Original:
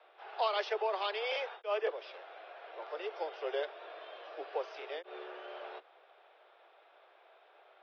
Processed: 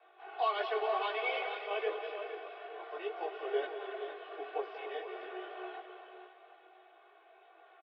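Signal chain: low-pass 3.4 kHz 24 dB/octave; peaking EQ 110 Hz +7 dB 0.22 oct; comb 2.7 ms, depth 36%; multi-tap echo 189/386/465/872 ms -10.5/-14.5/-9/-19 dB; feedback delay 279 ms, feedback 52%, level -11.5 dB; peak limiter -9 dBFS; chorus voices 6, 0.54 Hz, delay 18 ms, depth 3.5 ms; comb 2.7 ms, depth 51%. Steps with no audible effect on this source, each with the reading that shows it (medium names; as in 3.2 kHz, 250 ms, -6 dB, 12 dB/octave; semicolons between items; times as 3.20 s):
peaking EQ 110 Hz: input has nothing below 290 Hz; peak limiter -9 dBFS: peak at its input -19.5 dBFS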